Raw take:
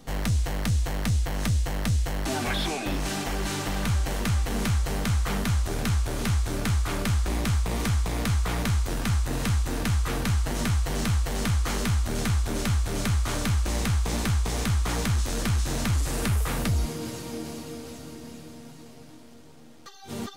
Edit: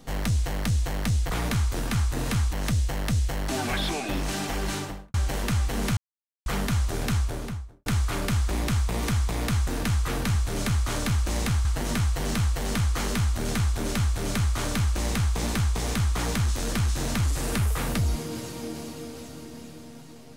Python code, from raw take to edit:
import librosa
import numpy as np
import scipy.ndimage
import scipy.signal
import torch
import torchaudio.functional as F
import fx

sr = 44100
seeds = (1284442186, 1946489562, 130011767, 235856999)

y = fx.studio_fade_out(x, sr, start_s=3.48, length_s=0.43)
y = fx.studio_fade_out(y, sr, start_s=5.89, length_s=0.74)
y = fx.edit(y, sr, fx.silence(start_s=4.74, length_s=0.49),
    fx.move(start_s=8.44, length_s=1.23, to_s=1.3),
    fx.duplicate(start_s=12.74, length_s=1.3, to_s=10.35), tone=tone)